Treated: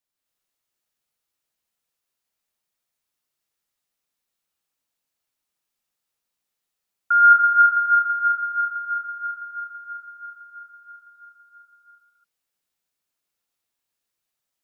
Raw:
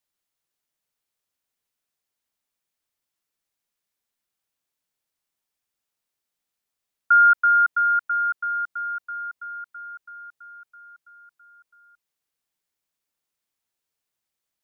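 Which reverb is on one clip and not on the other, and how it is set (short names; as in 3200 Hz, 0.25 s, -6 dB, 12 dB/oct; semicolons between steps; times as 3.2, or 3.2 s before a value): non-linear reverb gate 0.3 s rising, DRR -3.5 dB; gain -3.5 dB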